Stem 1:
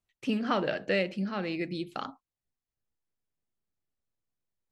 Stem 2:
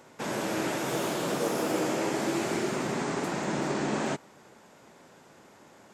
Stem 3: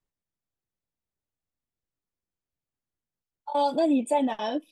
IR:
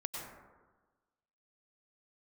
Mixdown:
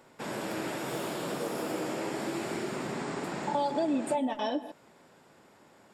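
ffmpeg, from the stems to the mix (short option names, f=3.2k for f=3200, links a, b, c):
-filter_complex "[0:a]highpass=1.3k,highshelf=f=3.9k:g=-6,acrusher=bits=3:mix=0:aa=0.000001,volume=-13dB[a];[1:a]bandreject=f=6.2k:w=5.9,volume=-4dB[b];[2:a]volume=2dB,asplit=2[c][d];[d]volume=-12.5dB[e];[3:a]atrim=start_sample=2205[f];[e][f]afir=irnorm=-1:irlink=0[g];[a][b][c][g]amix=inputs=4:normalize=0,acompressor=threshold=-29dB:ratio=3"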